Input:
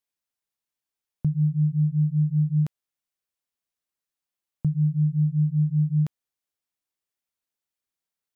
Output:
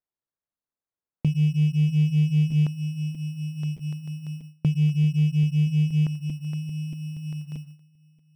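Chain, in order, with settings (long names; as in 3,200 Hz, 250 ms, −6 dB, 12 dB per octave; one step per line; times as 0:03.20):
feedback delay that plays each chunk backwards 630 ms, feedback 71%, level −12.5 dB
noise gate with hold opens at −34 dBFS
low-shelf EQ 250 Hz −5.5 dB
in parallel at −1 dB: downward compressor, threshold −35 dBFS, peak gain reduction 12 dB
on the sum: decimation without filtering 16×
slew-rate limiting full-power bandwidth 30 Hz
level +3 dB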